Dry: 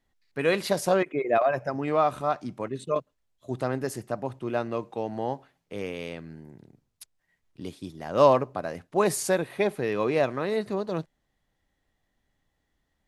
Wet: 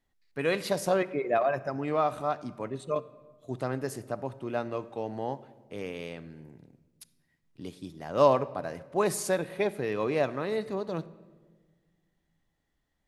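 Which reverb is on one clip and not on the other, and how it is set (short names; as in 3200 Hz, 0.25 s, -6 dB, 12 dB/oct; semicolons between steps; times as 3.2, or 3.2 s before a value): shoebox room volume 1500 m³, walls mixed, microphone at 0.3 m; gain -3.5 dB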